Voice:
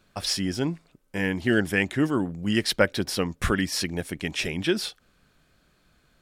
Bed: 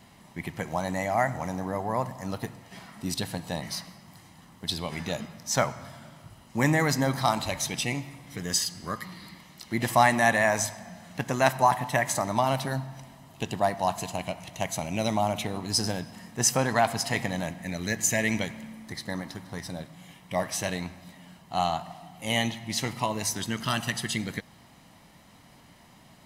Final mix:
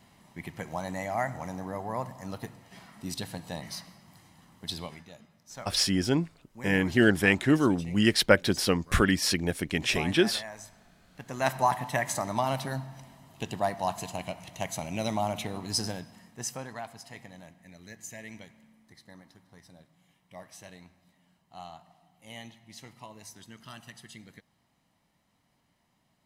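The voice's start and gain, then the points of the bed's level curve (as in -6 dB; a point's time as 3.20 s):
5.50 s, +1.0 dB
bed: 4.84 s -5 dB
5.06 s -18.5 dB
11.07 s -18.5 dB
11.50 s -3.5 dB
15.78 s -3.5 dB
16.91 s -18 dB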